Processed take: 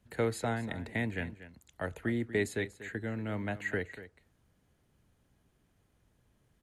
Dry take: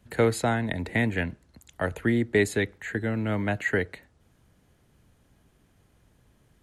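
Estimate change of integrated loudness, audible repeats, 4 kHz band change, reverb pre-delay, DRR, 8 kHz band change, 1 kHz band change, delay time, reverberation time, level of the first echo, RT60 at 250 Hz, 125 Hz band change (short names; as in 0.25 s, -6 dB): -8.5 dB, 1, -8.5 dB, none, none, -8.5 dB, -8.5 dB, 0.239 s, none, -14.5 dB, none, -8.5 dB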